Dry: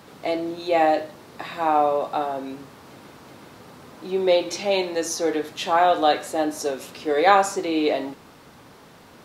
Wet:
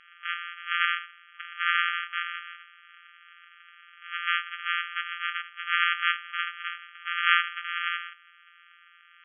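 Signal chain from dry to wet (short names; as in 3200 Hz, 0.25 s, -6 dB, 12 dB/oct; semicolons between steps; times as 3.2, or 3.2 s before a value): sample sorter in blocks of 256 samples; FFT band-pass 1200–3400 Hz; gain +2 dB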